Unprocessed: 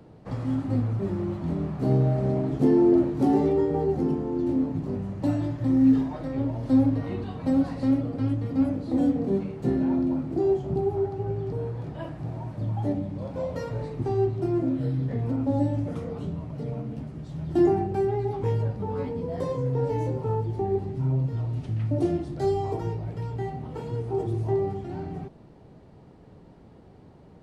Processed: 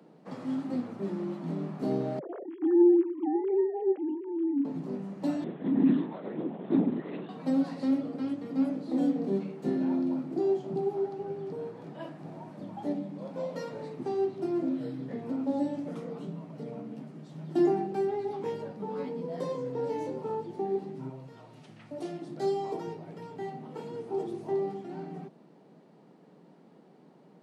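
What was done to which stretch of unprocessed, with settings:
2.19–4.65 s: formants replaced by sine waves
5.44–7.29 s: LPC vocoder at 8 kHz whisper
21.09–22.22 s: peaking EQ 260 Hz -10.5 dB 1.9 oct
whole clip: steep high-pass 160 Hz 48 dB/octave; dynamic bell 4.2 kHz, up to +4 dB, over -52 dBFS, Q 1.1; trim -4 dB

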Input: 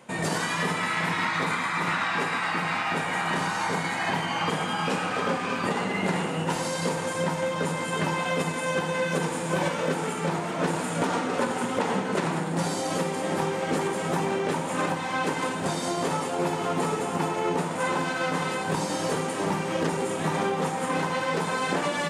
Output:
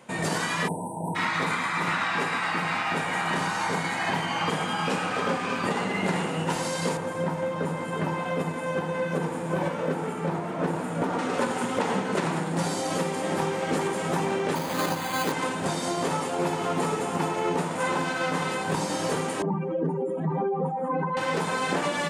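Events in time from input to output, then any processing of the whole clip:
0.68–1.16 s: spectral selection erased 1–7.8 kHz
6.97–11.19 s: peaking EQ 6.1 kHz -11.5 dB 3 oct
14.55–15.32 s: careless resampling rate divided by 8×, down none, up hold
19.42–21.17 s: spectral contrast enhancement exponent 2.4

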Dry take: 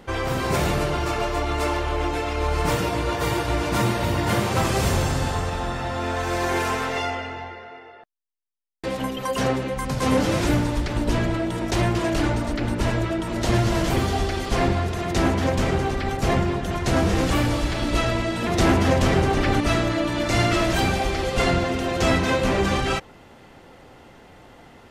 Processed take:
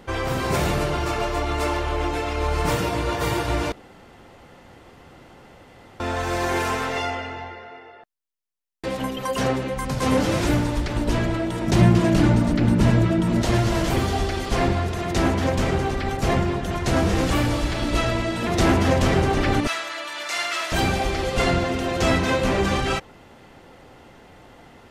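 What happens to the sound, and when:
3.72–6.00 s: room tone
11.67–13.42 s: peaking EQ 170 Hz +13.5 dB 1.2 oct
19.67–20.72 s: high-pass 1.1 kHz

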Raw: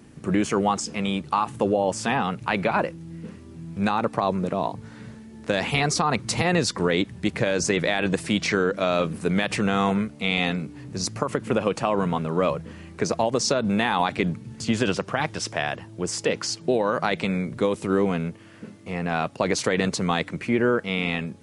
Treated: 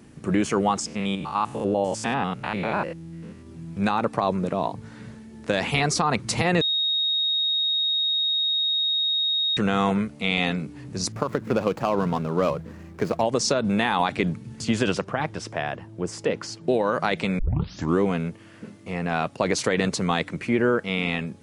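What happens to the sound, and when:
0.86–3.47 s: spectrogram pixelated in time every 100 ms
6.61–9.57 s: bleep 3.75 kHz -20.5 dBFS
11.12–13.21 s: median filter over 15 samples
15.04–16.68 s: treble shelf 2.4 kHz -9.5 dB
17.39 s: tape start 0.60 s

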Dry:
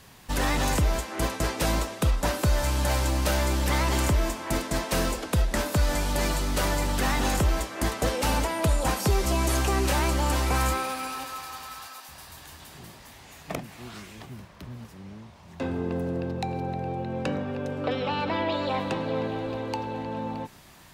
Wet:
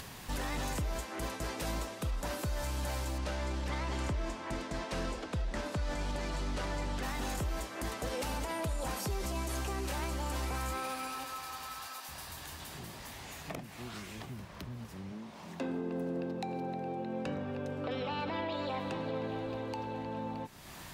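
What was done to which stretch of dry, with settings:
3.18–7.03 s: distance through air 71 m
15.12–17.26 s: resonant low shelf 140 Hz -13 dB, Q 1.5
whole clip: upward compressor, threshold -30 dBFS; peak limiter -21 dBFS; trim -6.5 dB

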